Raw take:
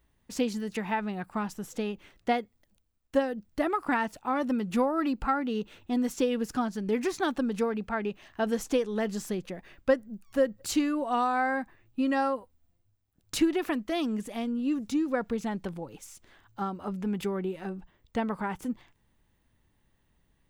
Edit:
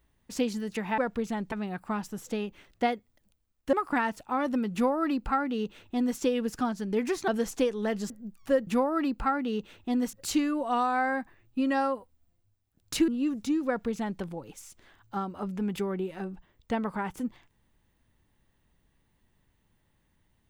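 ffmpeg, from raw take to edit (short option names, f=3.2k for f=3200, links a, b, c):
-filter_complex "[0:a]asplit=9[a][b][c][d][e][f][g][h][i];[a]atrim=end=0.982[j];[b]atrim=start=15.118:end=15.662[k];[c]atrim=start=0.978:end=3.192[l];[d]atrim=start=3.688:end=7.242[m];[e]atrim=start=8.408:end=9.232[n];[f]atrim=start=9.968:end=10.542[o];[g]atrim=start=4.688:end=6.152[p];[h]atrim=start=10.538:end=13.492[q];[i]atrim=start=14.528[r];[j][k]acrossfade=d=0.004:c1=hsin:c2=hsin[s];[s][l]acrossfade=d=0.004:c1=hsin:c2=hsin[t];[t][m]acrossfade=d=0.004:c1=hsin:c2=hsin[u];[u][n]acrossfade=d=0.004:c1=hsin:c2=hsin[v];[v][o]acrossfade=d=0.004:c1=hsin:c2=hsin[w];[w][p]acrossfade=d=0.004:c1=hsin:c2=hsin[x];[x][q]acrossfade=d=0.004:c1=hsin:c2=hsin[y];[y][r]acrossfade=d=0.004:c1=hsin:c2=hsin"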